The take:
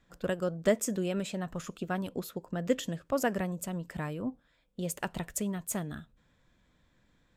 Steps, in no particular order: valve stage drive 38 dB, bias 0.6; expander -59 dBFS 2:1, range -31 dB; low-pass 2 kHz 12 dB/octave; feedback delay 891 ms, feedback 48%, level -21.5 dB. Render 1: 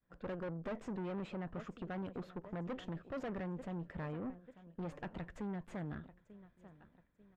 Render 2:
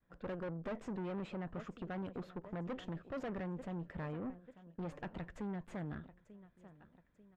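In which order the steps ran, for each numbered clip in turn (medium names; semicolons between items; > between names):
feedback delay > valve stage > low-pass > expander; expander > feedback delay > valve stage > low-pass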